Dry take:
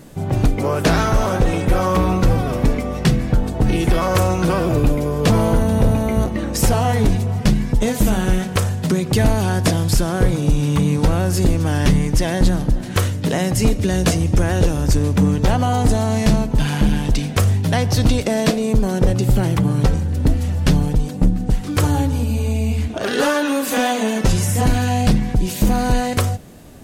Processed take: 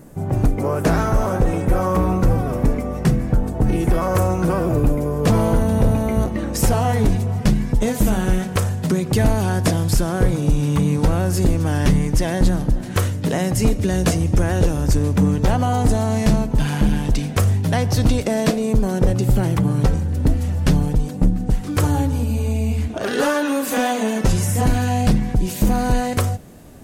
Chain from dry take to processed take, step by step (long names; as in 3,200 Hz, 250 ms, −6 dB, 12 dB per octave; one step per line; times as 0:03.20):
parametric band 3,600 Hz −11 dB 1.5 octaves, from 0:05.27 −3.5 dB
level −1 dB